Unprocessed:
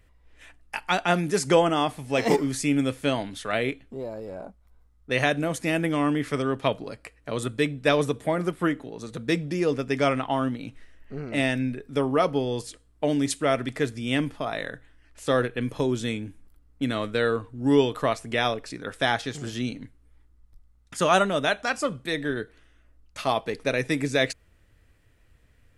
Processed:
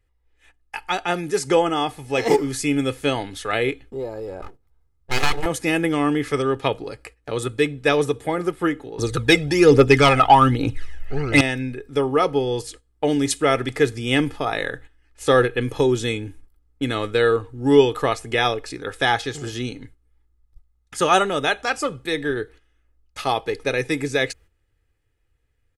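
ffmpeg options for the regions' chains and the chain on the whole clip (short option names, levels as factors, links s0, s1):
-filter_complex "[0:a]asettb=1/sr,asplit=3[s0][s1][s2];[s0]atrim=end=4.424[s3];[s1]atrim=start=4.42:end=5.46,asetpts=PTS-STARTPTS,afade=t=in:d=0.004:c=qsin,afade=t=out:st=1.036:d=0.004:c=qsin,bandreject=f=50:t=h:w=6,bandreject=f=100:t=h:w=6,bandreject=f=150:t=h:w=6,bandreject=f=200:t=h:w=6,bandreject=f=250:t=h:w=6,bandreject=f=300:t=h:w=6,bandreject=f=350:t=h:w=6,bandreject=f=400:t=h:w=6,bandreject=f=450:t=h:w=6,bandreject=f=500:t=h:w=6,aeval=exprs='abs(val(0))':c=same[s4];[s2]atrim=start=5.456[s5];[s3][s4]acrossfade=d=0.004:c1=hsin:c2=qsin[s6];[s6][s5]acrossfade=d=0.004:c1=qsin:c2=hsin,asettb=1/sr,asplit=3[s7][s8][s9];[s7]atrim=end=8.984[s10];[s8]atrim=start=8.98:end=11.41,asetpts=PTS-STARTPTS,afade=t=in:d=0.004:c=qsin,afade=t=out:st=2.426:d=0.004:c=qsin,equalizer=f=200:t=o:w=0.34:g=-9.5,aphaser=in_gain=1:out_gain=1:delay=1.6:decay=0.6:speed=1.2:type=triangular,aeval=exprs='0.447*sin(PI/2*1.78*val(0)/0.447)':c=same[s11];[s9]atrim=start=11.406[s12];[s10][s11]acrossfade=d=0.004:c1=hsin:c2=qsin[s13];[s13][s12]acrossfade=d=0.004:c1=qsin:c2=hsin,agate=range=0.282:threshold=0.00447:ratio=16:detection=peak,aecho=1:1:2.4:0.52,dynaudnorm=f=140:g=31:m=3.76,volume=0.891"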